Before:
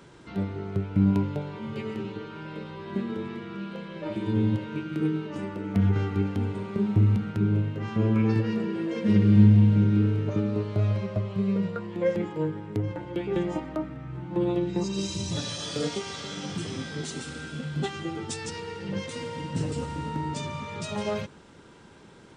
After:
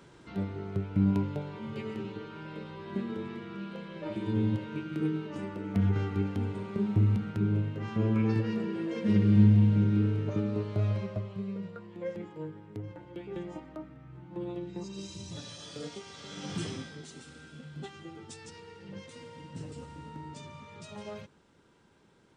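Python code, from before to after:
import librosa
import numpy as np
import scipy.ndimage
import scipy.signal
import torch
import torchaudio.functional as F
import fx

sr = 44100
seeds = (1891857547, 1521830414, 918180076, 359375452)

y = fx.gain(x, sr, db=fx.line((11.01, -4.0), (11.53, -11.5), (16.13, -11.5), (16.63, -1.0), (17.01, -12.5)))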